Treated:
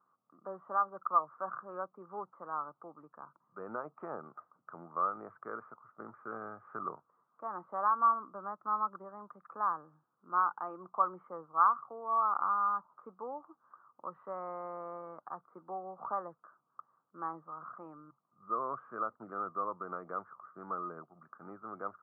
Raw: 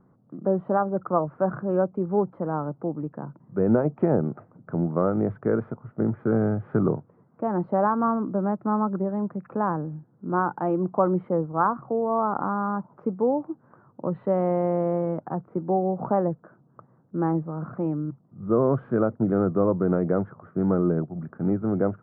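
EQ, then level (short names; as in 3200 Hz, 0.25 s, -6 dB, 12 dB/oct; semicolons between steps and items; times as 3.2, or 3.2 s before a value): band-pass 1200 Hz, Q 7.6; +3.5 dB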